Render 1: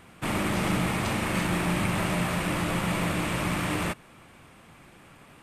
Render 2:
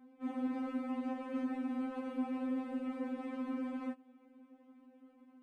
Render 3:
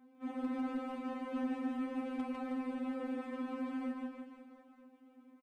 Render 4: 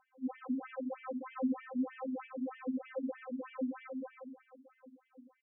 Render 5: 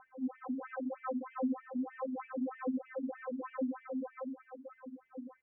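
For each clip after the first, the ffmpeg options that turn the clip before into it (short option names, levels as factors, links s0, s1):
-af "bandpass=f=290:t=q:w=1.9:csg=0,afftfilt=real='re*3.46*eq(mod(b,12),0)':imag='im*3.46*eq(mod(b,12),0)':win_size=2048:overlap=0.75,volume=1.12"
-filter_complex "[0:a]lowshelf=f=490:g=-3,aeval=exprs='0.0376*(cos(1*acos(clip(val(0)/0.0376,-1,1)))-cos(1*PI/2))+0.0075*(cos(3*acos(clip(val(0)/0.0376,-1,1)))-cos(3*PI/2))+0.00668*(cos(5*acos(clip(val(0)/0.0376,-1,1)))-cos(5*PI/2))+0.00266*(cos(7*acos(clip(val(0)/0.0376,-1,1)))-cos(7*PI/2))':c=same,asplit=2[s0][s1];[s1]aecho=0:1:150|315|496.5|696.2|915.8:0.631|0.398|0.251|0.158|0.1[s2];[s0][s2]amix=inputs=2:normalize=0,volume=1.19"
-af "equalizer=f=510:w=1.5:g=5.5,afftfilt=real='re*between(b*sr/1024,220*pow(2400/220,0.5+0.5*sin(2*PI*3.2*pts/sr))/1.41,220*pow(2400/220,0.5+0.5*sin(2*PI*3.2*pts/sr))*1.41)':imag='im*between(b*sr/1024,220*pow(2400/220,0.5+0.5*sin(2*PI*3.2*pts/sr))/1.41,220*pow(2400/220,0.5+0.5*sin(2*PI*3.2*pts/sr))*1.41)':win_size=1024:overlap=0.75,volume=1.68"
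-af "aphaser=in_gain=1:out_gain=1:delay=4.2:decay=0.4:speed=0.38:type=sinusoidal,acompressor=threshold=0.00224:ratio=2,lowpass=f=1900:w=0.5412,lowpass=f=1900:w=1.3066,volume=3.16"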